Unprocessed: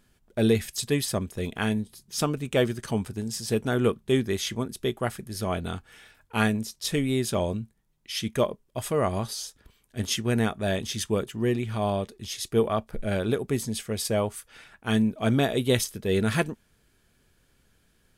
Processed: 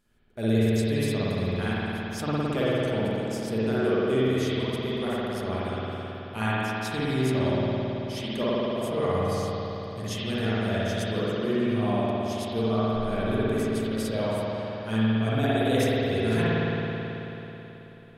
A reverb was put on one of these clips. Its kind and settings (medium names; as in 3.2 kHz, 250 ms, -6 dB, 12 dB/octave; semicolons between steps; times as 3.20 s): spring tank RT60 3.7 s, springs 54 ms, chirp 35 ms, DRR -10 dB; trim -9.5 dB